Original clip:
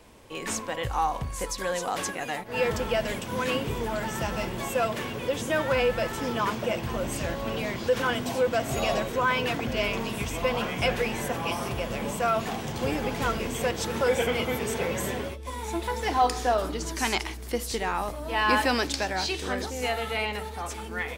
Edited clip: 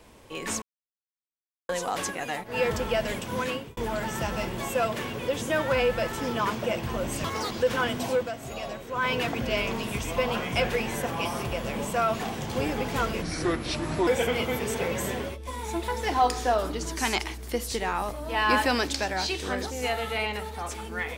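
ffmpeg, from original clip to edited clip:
ffmpeg -i in.wav -filter_complex "[0:a]asplit=10[link_01][link_02][link_03][link_04][link_05][link_06][link_07][link_08][link_09][link_10];[link_01]atrim=end=0.62,asetpts=PTS-STARTPTS,afade=type=out:start_time=0.616:duration=0.004:curve=hsin[link_11];[link_02]atrim=start=0.62:end=1.69,asetpts=PTS-STARTPTS,volume=0[link_12];[link_03]atrim=start=1.69:end=3.77,asetpts=PTS-STARTPTS,afade=type=in:duration=0.004:curve=hsin,afade=type=out:start_time=1.7:duration=0.38[link_13];[link_04]atrim=start=3.77:end=7.244,asetpts=PTS-STARTPTS,afade=type=in:duration=0.004:curve=hsin[link_14];[link_05]atrim=start=7.24:end=7.77,asetpts=PTS-STARTPTS,asetrate=86877,aresample=44100,atrim=end_sample=11864,asetpts=PTS-STARTPTS[link_15];[link_06]atrim=start=7.766:end=8.58,asetpts=PTS-STARTPTS,afade=type=out:start_time=0.624:duration=0.19:silence=0.354813[link_16];[link_07]atrim=start=8.58:end=9.17,asetpts=PTS-STARTPTS,volume=-9dB[link_17];[link_08]atrim=start=9.17:end=13.484,asetpts=PTS-STARTPTS,afade=type=in:duration=0.19:silence=0.354813[link_18];[link_09]atrim=start=13.48:end=14.07,asetpts=PTS-STARTPTS,asetrate=30429,aresample=44100[link_19];[link_10]atrim=start=14.066[link_20];[link_11][link_12][link_13][link_14]concat=n=4:v=0:a=1[link_21];[link_21][link_15]acrossfade=duration=0.004:curve1=hsin:curve2=hsin[link_22];[link_16][link_17][link_18]concat=n=3:v=0:a=1[link_23];[link_22][link_23]acrossfade=duration=0.004:curve1=hsin:curve2=hsin[link_24];[link_24][link_19]acrossfade=duration=0.004:curve1=hsin:curve2=hsin[link_25];[link_25][link_20]acrossfade=duration=0.004:curve1=hsin:curve2=hsin" out.wav

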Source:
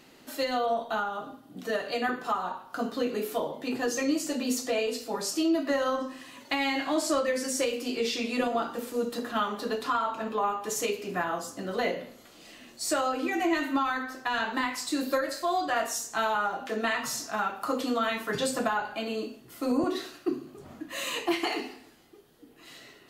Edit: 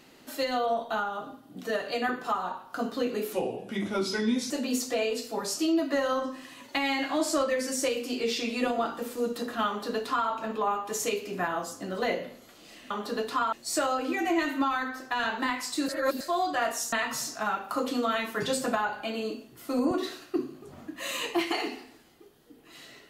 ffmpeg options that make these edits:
ffmpeg -i in.wav -filter_complex "[0:a]asplit=8[link_01][link_02][link_03][link_04][link_05][link_06][link_07][link_08];[link_01]atrim=end=3.334[link_09];[link_02]atrim=start=3.33:end=4.27,asetpts=PTS-STARTPTS,asetrate=35280,aresample=44100[link_10];[link_03]atrim=start=4.266:end=12.672[link_11];[link_04]atrim=start=9.438:end=10.062[link_12];[link_05]atrim=start=12.668:end=15.032[link_13];[link_06]atrim=start=15.028:end=15.352,asetpts=PTS-STARTPTS,areverse[link_14];[link_07]atrim=start=15.348:end=16.072[link_15];[link_08]atrim=start=16.848[link_16];[link_09][link_10]acrossfade=duration=0.004:curve1=hsin:curve2=hsin[link_17];[link_17][link_11]acrossfade=duration=0.004:curve1=hsin:curve2=hsin[link_18];[link_18][link_12]acrossfade=duration=0.004:curve1=hsin:curve2=hsin[link_19];[link_19][link_13]acrossfade=duration=0.004:curve1=hsin:curve2=hsin[link_20];[link_20][link_14]acrossfade=duration=0.004:curve1=hsin:curve2=hsin[link_21];[link_21][link_15]acrossfade=duration=0.004:curve1=hsin:curve2=hsin[link_22];[link_22][link_16]acrossfade=duration=0.004:curve1=hsin:curve2=hsin" out.wav

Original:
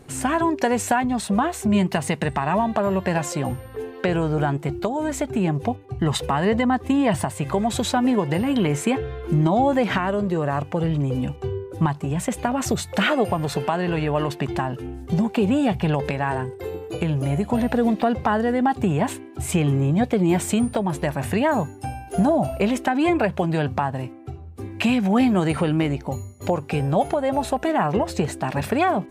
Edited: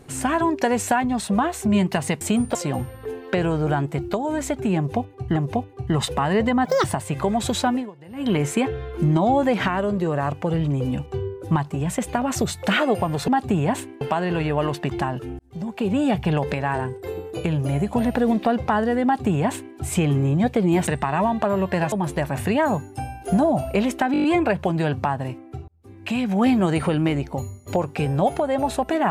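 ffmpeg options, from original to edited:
ffmpeg -i in.wav -filter_complex "[0:a]asplit=20[link_01][link_02][link_03][link_04][link_05][link_06][link_07][link_08][link_09][link_10][link_11][link_12][link_13][link_14][link_15][link_16][link_17][link_18][link_19][link_20];[link_01]atrim=end=2.212[link_21];[link_02]atrim=start=20.438:end=20.782[link_22];[link_03]atrim=start=3.258:end=6.072[link_23];[link_04]atrim=start=5.478:end=6.774[link_24];[link_05]atrim=start=6.77:end=7.14,asetpts=PTS-STARTPTS,asetrate=85554,aresample=44100[link_25];[link_06]atrim=start=7.136:end=8.26,asetpts=PTS-STARTPTS,afade=type=out:start_time=0.864:duration=0.26:curve=qua:silence=0.0749894[link_26];[link_07]atrim=start=8.26:end=8.34,asetpts=PTS-STARTPTS,volume=-22.5dB[link_27];[link_08]atrim=start=8.34:end=13.582,asetpts=PTS-STARTPTS,afade=type=in:duration=0.26:curve=qua:silence=0.0749894[link_28];[link_09]atrim=start=18.608:end=19.342[link_29];[link_10]atrim=start=13.578:end=14.96,asetpts=PTS-STARTPTS,afade=type=out:start_time=1.378:duration=0.004:curve=hsin[link_30];[link_11]atrim=start=14.96:end=20.442,asetpts=PTS-STARTPTS,afade=type=in:duration=0.68[link_31];[link_12]atrim=start=2.208:end=3.262[link_32];[link_13]atrim=start=20.778:end=23.002[link_33];[link_14]atrim=start=22.978:end=23.002[link_34];[link_15]atrim=start=22.978:end=23.002[link_35];[link_16]atrim=start=22.978:end=23.002[link_36];[link_17]atrim=start=22.978:end=23.002[link_37];[link_18]atrim=start=22.978:end=23.002[link_38];[link_19]atrim=start=22.978:end=24.42,asetpts=PTS-STARTPTS,afade=type=out:start_time=1.438:duration=0.004:curve=hsin[link_39];[link_20]atrim=start=24.42,asetpts=PTS-STARTPTS,afade=type=in:duration=0.79[link_40];[link_21][link_22]acrossfade=duration=0.004:curve1=hsin:curve2=hsin[link_41];[link_41][link_23]acrossfade=duration=0.004:curve1=hsin:curve2=hsin[link_42];[link_42][link_24]acrossfade=duration=0.004:curve1=hsin:curve2=hsin[link_43];[link_43][link_25]acrossfade=duration=0.004:curve1=hsin:curve2=hsin[link_44];[link_26][link_27][link_28]concat=n=3:v=0:a=1[link_45];[link_44][link_45]acrossfade=duration=0.004:curve1=hsin:curve2=hsin[link_46];[link_46][link_29]acrossfade=duration=0.004:curve1=hsin:curve2=hsin[link_47];[link_30][link_31]concat=n=2:v=0:a=1[link_48];[link_47][link_48]acrossfade=duration=0.004:curve1=hsin:curve2=hsin[link_49];[link_49][link_32]acrossfade=duration=0.004:curve1=hsin:curve2=hsin[link_50];[link_50][link_33]acrossfade=duration=0.004:curve1=hsin:curve2=hsin[link_51];[link_51][link_34]acrossfade=duration=0.004:curve1=hsin:curve2=hsin[link_52];[link_52][link_35]acrossfade=duration=0.004:curve1=hsin:curve2=hsin[link_53];[link_53][link_36]acrossfade=duration=0.004:curve1=hsin:curve2=hsin[link_54];[link_54][link_37]acrossfade=duration=0.004:curve1=hsin:curve2=hsin[link_55];[link_55][link_38]acrossfade=duration=0.004:curve1=hsin:curve2=hsin[link_56];[link_39][link_40]concat=n=2:v=0:a=1[link_57];[link_56][link_57]acrossfade=duration=0.004:curve1=hsin:curve2=hsin" out.wav

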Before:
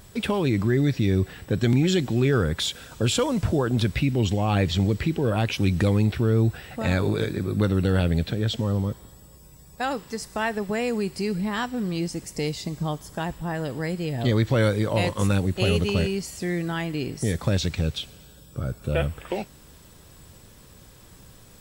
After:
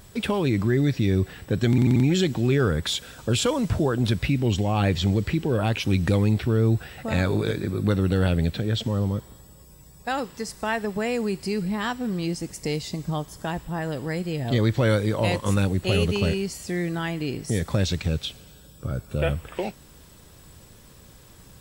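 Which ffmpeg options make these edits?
ffmpeg -i in.wav -filter_complex "[0:a]asplit=4[link_01][link_02][link_03][link_04];[link_01]atrim=end=1.782[link_05];[link_02]atrim=start=1.688:end=1.782[link_06];[link_03]atrim=start=1.688:end=1.782[link_07];[link_04]atrim=start=1.688[link_08];[link_05][link_06]acrossfade=duration=0.004:curve1=hsin:curve2=hsin[link_09];[link_09][link_07]acrossfade=duration=0.004:curve1=hsin:curve2=hsin[link_10];[link_10][link_08]acrossfade=duration=0.004:curve1=hsin:curve2=hsin" out.wav

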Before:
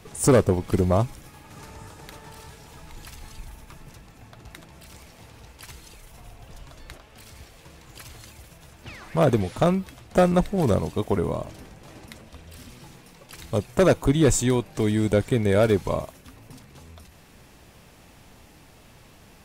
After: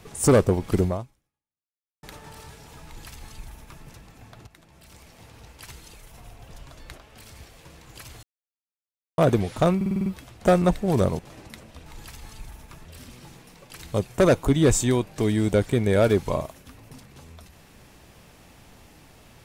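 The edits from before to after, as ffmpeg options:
ffmpeg -i in.wav -filter_complex "[0:a]asplit=14[link_01][link_02][link_03][link_04][link_05][link_06][link_07][link_08][link_09][link_10][link_11][link_12][link_13][link_14];[link_01]atrim=end=2.03,asetpts=PTS-STARTPTS,afade=type=out:start_time=0.85:duration=1.18:curve=exp[link_15];[link_02]atrim=start=2.03:end=4.47,asetpts=PTS-STARTPTS,afade=type=in:duration=0.004:curve=hsin,afade=type=out:start_time=2.436:duration=0.004:curve=hsin:silence=0.237137[link_16];[link_03]atrim=start=4.47:end=8.23,asetpts=PTS-STARTPTS,afade=type=in:duration=1.21:curve=qsin:silence=0.237137,afade=type=out:start_time=3.756:duration=0.004:curve=hsin[link_17];[link_04]atrim=start=8.23:end=9.18,asetpts=PTS-STARTPTS,volume=0[link_18];[link_05]atrim=start=9.18:end=9.812,asetpts=PTS-STARTPTS,afade=type=in:duration=0.004:curve=hsin[link_19];[link_06]atrim=start=9.758:end=9.812[link_20];[link_07]atrim=start=9.758:end=9.812[link_21];[link_08]atrim=start=9.758:end=9.812[link_22];[link_09]atrim=start=9.758:end=9.812[link_23];[link_10]atrim=start=9.758:end=9.812[link_24];[link_11]atrim=start=9.758:end=10.892[link_25];[link_12]atrim=start=11.768:end=12.442[link_26];[link_13]atrim=start=2.848:end=3.842[link_27];[link_14]atrim=start=12.438[link_28];[link_15][link_16][link_17][link_18][link_19]concat=n=5:v=0:a=1[link_29];[link_29][link_20]acrossfade=duration=0.004:curve1=hsin:curve2=hsin[link_30];[link_30][link_21]acrossfade=duration=0.004:curve1=hsin:curve2=hsin[link_31];[link_31][link_22]acrossfade=duration=0.004:curve1=hsin:curve2=hsin[link_32];[link_32][link_23]acrossfade=duration=0.004:curve1=hsin:curve2=hsin[link_33];[link_33][link_24]acrossfade=duration=0.004:curve1=hsin:curve2=hsin[link_34];[link_34][link_25]acrossfade=duration=0.004:curve1=hsin:curve2=hsin[link_35];[link_35][link_26]acrossfade=duration=0.004:curve1=hsin:curve2=hsin[link_36];[link_36][link_27]acrossfade=duration=0.004:curve1=hsin:curve2=hsin[link_37];[link_37][link_28]acrossfade=duration=0.004:curve1=hsin:curve2=hsin" out.wav

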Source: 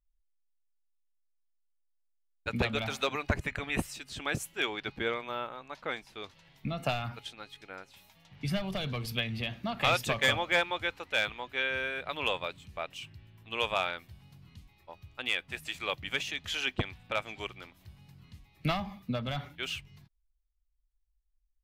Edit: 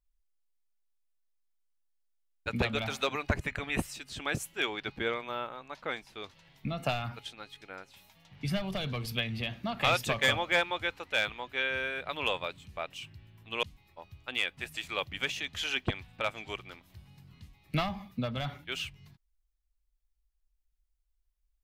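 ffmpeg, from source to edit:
ffmpeg -i in.wav -filter_complex "[0:a]asplit=2[link_01][link_02];[link_01]atrim=end=13.632[link_03];[link_02]atrim=start=14.538[link_04];[link_03][link_04]acrossfade=duration=0.004:curve1=hsin:curve2=hsin" out.wav

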